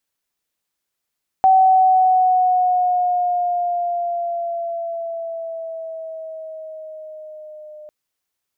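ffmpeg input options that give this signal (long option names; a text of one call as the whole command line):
ffmpeg -f lavfi -i "aevalsrc='pow(10,(-8.5-27*t/6.45)/20)*sin(2*PI*762*6.45/(-4*log(2)/12)*(exp(-4*log(2)/12*t/6.45)-1))':duration=6.45:sample_rate=44100" out.wav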